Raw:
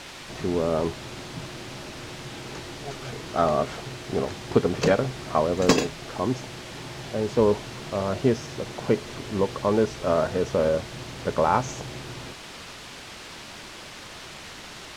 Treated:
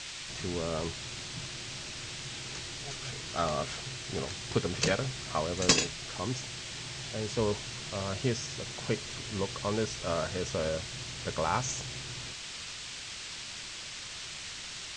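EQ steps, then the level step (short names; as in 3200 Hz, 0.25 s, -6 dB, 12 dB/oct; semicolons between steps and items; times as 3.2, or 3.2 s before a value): EQ curve 120 Hz 0 dB, 260 Hz -7 dB, 840 Hz -6 dB, 2600 Hz +4 dB, 8200 Hz +9 dB, 12000 Hz -19 dB; -4.0 dB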